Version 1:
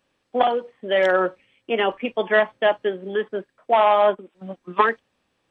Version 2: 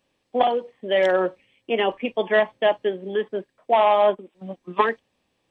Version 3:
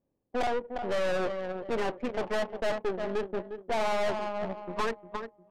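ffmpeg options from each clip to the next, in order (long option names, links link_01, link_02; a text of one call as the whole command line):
ffmpeg -i in.wav -af "equalizer=frequency=1400:width=2.8:gain=-8" out.wav
ffmpeg -i in.wav -af "aecho=1:1:354|708|1062|1416:0.251|0.0955|0.0363|0.0138,aeval=exprs='(tanh(20*val(0)+0.65)-tanh(0.65))/20':channel_layout=same,adynamicsmooth=sensitivity=3:basefreq=590" out.wav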